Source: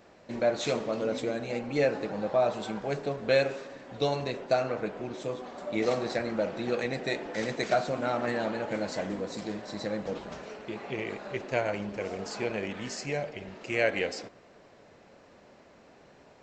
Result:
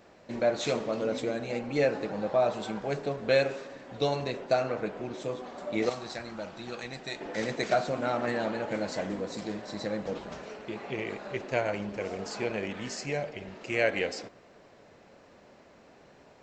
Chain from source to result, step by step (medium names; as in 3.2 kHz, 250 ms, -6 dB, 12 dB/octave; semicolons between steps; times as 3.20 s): 5.89–7.21 s: graphic EQ 125/250/500/2000 Hz -5/-6/-11/-6 dB